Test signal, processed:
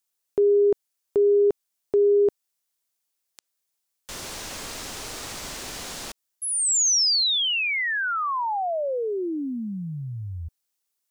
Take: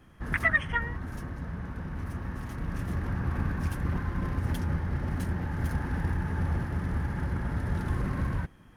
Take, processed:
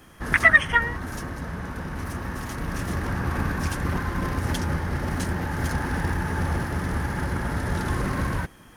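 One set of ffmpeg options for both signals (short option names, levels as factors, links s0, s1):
-filter_complex "[0:a]bass=f=250:g=-7,treble=f=4000:g=8,acrossover=split=8600[s0][s1];[s1]acompressor=threshold=0.00158:ratio=4:attack=1:release=60[s2];[s0][s2]amix=inputs=2:normalize=0,volume=2.82"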